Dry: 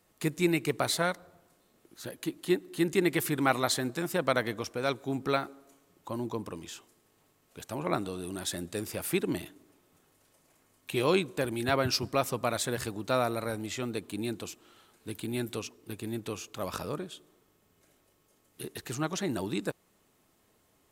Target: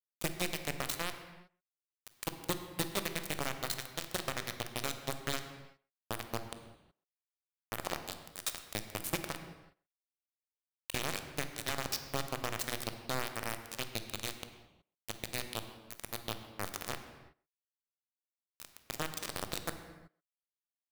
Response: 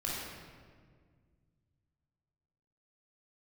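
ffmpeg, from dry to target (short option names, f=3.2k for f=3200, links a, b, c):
-filter_complex "[0:a]equalizer=f=870:w=0.43:g=-6.5,acompressor=threshold=-33dB:ratio=12,acrusher=bits=4:mix=0:aa=0.000001,asplit=2[a][b];[b]adelay=130,highpass=300,lowpass=3.4k,asoftclip=type=hard:threshold=-32dB,volume=-20dB[c];[a][c]amix=inputs=2:normalize=0,asplit=2[d][e];[1:a]atrim=start_sample=2205,afade=t=out:st=0.43:d=0.01,atrim=end_sample=19404[f];[e][f]afir=irnorm=-1:irlink=0,volume=-9.5dB[g];[d][g]amix=inputs=2:normalize=0"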